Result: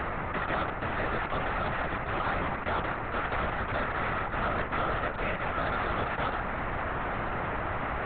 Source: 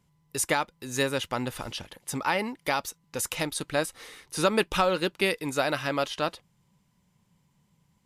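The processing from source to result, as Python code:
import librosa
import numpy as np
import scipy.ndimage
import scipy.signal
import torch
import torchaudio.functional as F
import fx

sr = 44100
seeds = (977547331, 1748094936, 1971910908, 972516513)

p1 = fx.bin_compress(x, sr, power=0.2)
p2 = scipy.signal.sosfilt(scipy.signal.butter(4, 1800.0, 'lowpass', fs=sr, output='sos'), p1)
p3 = fx.peak_eq(p2, sr, hz=380.0, db=-11.0, octaves=2.0)
p4 = fx.rider(p3, sr, range_db=4, speed_s=0.5)
p5 = p3 + (p4 * librosa.db_to_amplitude(3.0))
p6 = 10.0 ** (-16.0 / 20.0) * np.tanh(p5 / 10.0 ** (-16.0 / 20.0))
p7 = fx.lpc_vocoder(p6, sr, seeds[0], excitation='whisper', order=10)
y = p7 * librosa.db_to_amplitude(-8.5)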